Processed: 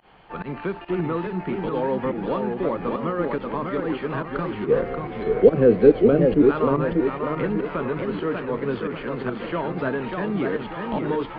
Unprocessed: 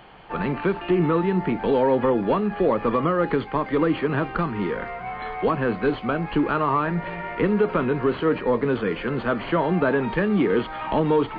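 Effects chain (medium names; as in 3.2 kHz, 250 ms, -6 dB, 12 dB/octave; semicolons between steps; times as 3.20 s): volume shaper 142 bpm, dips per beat 1, -23 dB, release 93 ms; 4.66–6.42 s: resonant low shelf 670 Hz +9.5 dB, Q 3; modulated delay 589 ms, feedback 46%, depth 170 cents, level -4.5 dB; trim -5 dB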